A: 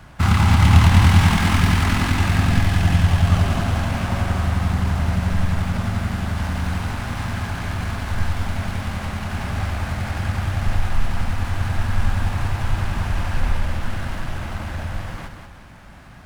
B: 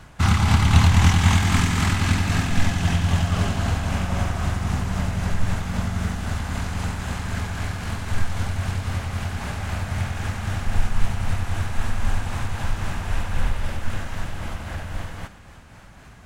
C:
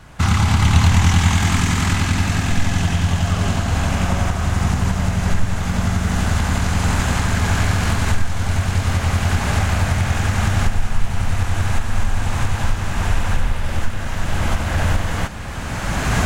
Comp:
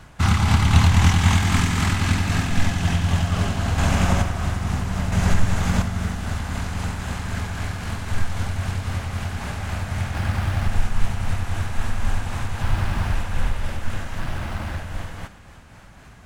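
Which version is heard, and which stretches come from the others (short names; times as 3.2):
B
3.78–4.22 from C
5.12–5.82 from C
10.14–10.68 from A
12.62–13.15 from A
14.19–14.78 from A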